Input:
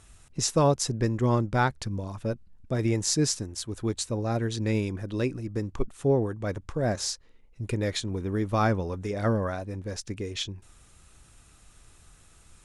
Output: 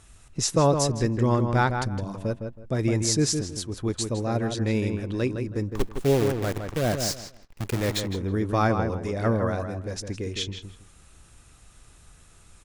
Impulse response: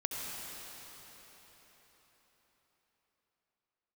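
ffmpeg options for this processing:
-filter_complex "[0:a]asettb=1/sr,asplit=3[link_01][link_02][link_03];[link_01]atrim=end=5.714[link_04];[link_02]atrim=start=5.71:end=8.01,asetpts=PTS-STARTPTS,afade=type=in:duration=0.004:curve=qsin,afade=type=out:start_time=2.296:duration=0.004:curve=qsin,acrusher=bits=6:dc=4:mix=0:aa=0.000001[link_05];[link_03]atrim=start=8.006[link_06];[link_04][link_05]acrossfade=duration=0.004:curve1=hsin:curve2=qsin[link_07];[link_07][link_06]acrossfade=duration=0.004:curve1=qsin:curve2=hsin,asplit=2[link_08][link_09];[link_09]adelay=161,lowpass=frequency=2500:poles=1,volume=-6dB,asplit=2[link_10][link_11];[link_11]adelay=161,lowpass=frequency=2500:poles=1,volume=0.23,asplit=2[link_12][link_13];[link_13]adelay=161,lowpass=frequency=2500:poles=1,volume=0.23[link_14];[link_08][link_10][link_12][link_14]amix=inputs=4:normalize=0,volume=1.5dB"

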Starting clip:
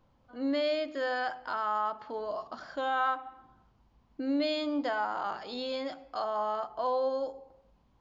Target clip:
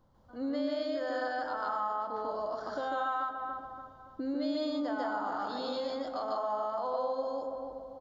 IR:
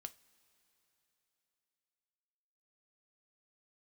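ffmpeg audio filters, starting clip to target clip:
-filter_complex "[0:a]equalizer=frequency=2500:width=2.5:gain=-13,asplit=2[link_01][link_02];[link_02]adelay=286,lowpass=frequency=1100:poles=1,volume=-8dB,asplit=2[link_03][link_04];[link_04]adelay=286,lowpass=frequency=1100:poles=1,volume=0.48,asplit=2[link_05][link_06];[link_06]adelay=286,lowpass=frequency=1100:poles=1,volume=0.48,asplit=2[link_07][link_08];[link_08]adelay=286,lowpass=frequency=1100:poles=1,volume=0.48,asplit=2[link_09][link_10];[link_10]adelay=286,lowpass=frequency=1100:poles=1,volume=0.48,asplit=2[link_11][link_12];[link_12]adelay=286,lowpass=frequency=1100:poles=1,volume=0.48[link_13];[link_01][link_03][link_05][link_07][link_09][link_11][link_13]amix=inputs=7:normalize=0,asplit=2[link_14][link_15];[1:a]atrim=start_sample=2205,adelay=147[link_16];[link_15][link_16]afir=irnorm=-1:irlink=0,volume=7.5dB[link_17];[link_14][link_17]amix=inputs=2:normalize=0,acompressor=threshold=-33dB:ratio=2.5"

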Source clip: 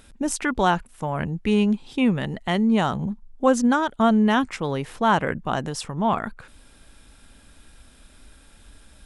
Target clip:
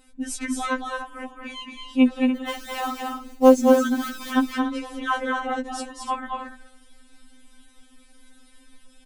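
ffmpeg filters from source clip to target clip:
ffmpeg -i in.wav -filter_complex "[0:a]asettb=1/sr,asplit=3[link_01][link_02][link_03];[link_01]atrim=end=2.354[link_04];[link_02]atrim=start=2.35:end=4.31,asetpts=PTS-STARTPTS,afade=type=in:duration=0.004:curve=qsin,afade=type=out:start_time=1.956:duration=0.004:curve=qsin,acrusher=bits=4:mode=log:mix=0:aa=0.000001[link_05];[link_03]atrim=start=4.306[link_06];[link_04][link_05]acrossfade=duration=0.004:curve1=hsin:curve2=qsin[link_07];[link_07][link_06]acrossfade=duration=0.004:curve1=qsin:curve2=hsin,aecho=1:1:221.6|288.6:0.631|0.282,afftfilt=real='re*3.46*eq(mod(b,12),0)':imag='im*3.46*eq(mod(b,12),0)':win_size=2048:overlap=0.75,volume=-2dB" out.wav

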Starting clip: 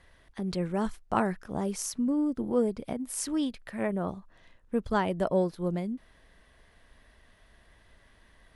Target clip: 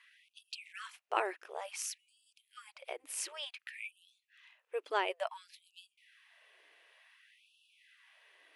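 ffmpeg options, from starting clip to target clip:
ffmpeg -i in.wav -af "equalizer=frequency=2600:width_type=o:width=0.74:gain=13,afftfilt=real='re*gte(b*sr/1024,290*pow(2600/290,0.5+0.5*sin(2*PI*0.56*pts/sr)))':imag='im*gte(b*sr/1024,290*pow(2600/290,0.5+0.5*sin(2*PI*0.56*pts/sr)))':win_size=1024:overlap=0.75,volume=-5.5dB" out.wav

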